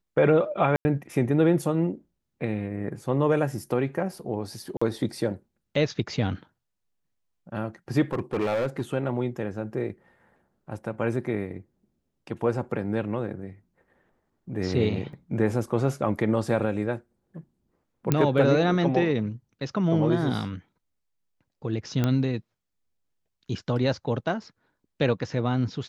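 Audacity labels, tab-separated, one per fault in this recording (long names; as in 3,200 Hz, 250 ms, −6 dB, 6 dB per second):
0.760000	0.850000	drop-out 90 ms
4.770000	4.820000	drop-out 45 ms
8.130000	8.820000	clipping −21.5 dBFS
15.130000	15.130000	drop-out 2.3 ms
18.120000	18.120000	click −8 dBFS
22.040000	22.040000	click −12 dBFS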